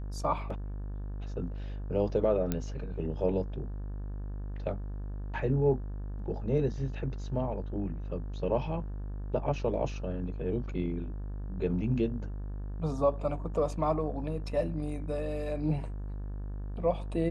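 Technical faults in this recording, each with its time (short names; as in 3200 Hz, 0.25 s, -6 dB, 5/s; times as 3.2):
buzz 50 Hz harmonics 36 -37 dBFS
2.52 pop -16 dBFS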